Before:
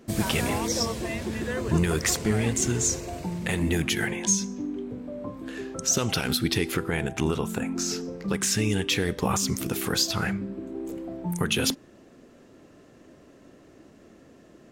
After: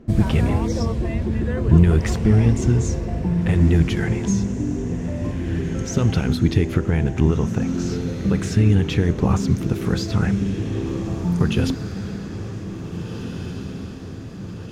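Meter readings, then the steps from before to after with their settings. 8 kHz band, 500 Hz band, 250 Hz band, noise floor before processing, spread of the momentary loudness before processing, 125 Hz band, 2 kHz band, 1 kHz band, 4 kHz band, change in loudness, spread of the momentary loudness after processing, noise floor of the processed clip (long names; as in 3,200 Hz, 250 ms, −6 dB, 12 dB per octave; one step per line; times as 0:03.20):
−9.5 dB, +4.0 dB, +8.0 dB, −53 dBFS, 11 LU, +12.5 dB, −2.0 dB, +1.0 dB, −6.0 dB, +5.5 dB, 14 LU, −33 dBFS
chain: RIAA equalisation playback
feedback delay with all-pass diffusion 1,823 ms, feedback 58%, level −9.5 dB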